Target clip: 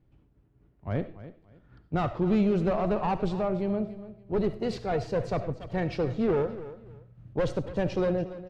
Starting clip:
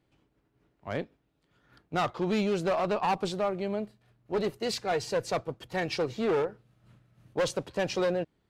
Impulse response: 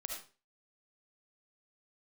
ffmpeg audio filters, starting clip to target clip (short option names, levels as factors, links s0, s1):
-filter_complex "[0:a]aemphasis=mode=reproduction:type=riaa,aecho=1:1:286|572:0.178|0.0409,asplit=2[s0][s1];[1:a]atrim=start_sample=2205[s2];[s1][s2]afir=irnorm=-1:irlink=0,volume=0.531[s3];[s0][s3]amix=inputs=2:normalize=0,volume=0.562"